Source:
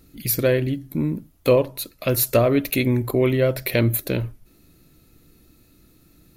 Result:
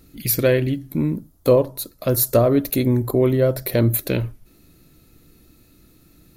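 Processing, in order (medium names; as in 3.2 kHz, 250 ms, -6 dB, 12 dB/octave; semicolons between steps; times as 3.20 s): 1.16–3.94 s: peaking EQ 2.5 kHz -12.5 dB 0.95 oct; trim +2 dB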